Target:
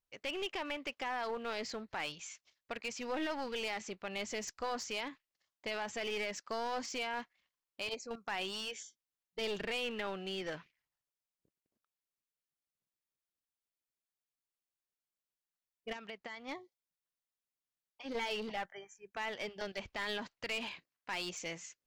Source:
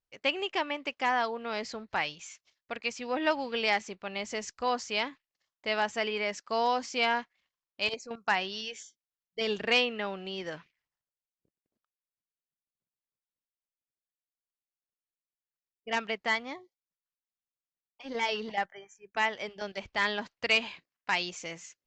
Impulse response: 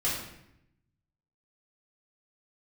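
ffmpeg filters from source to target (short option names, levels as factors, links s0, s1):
-filter_complex "[0:a]alimiter=level_in=1.19:limit=0.0631:level=0:latency=1:release=42,volume=0.841,asplit=3[s0][s1][s2];[s0]afade=t=out:st=15.92:d=0.02[s3];[s1]acompressor=threshold=0.00794:ratio=5,afade=t=in:st=15.92:d=0.02,afade=t=out:st=16.47:d=0.02[s4];[s2]afade=t=in:st=16.47:d=0.02[s5];[s3][s4][s5]amix=inputs=3:normalize=0,aeval=exprs='clip(val(0),-1,0.0158)':c=same,volume=0.841"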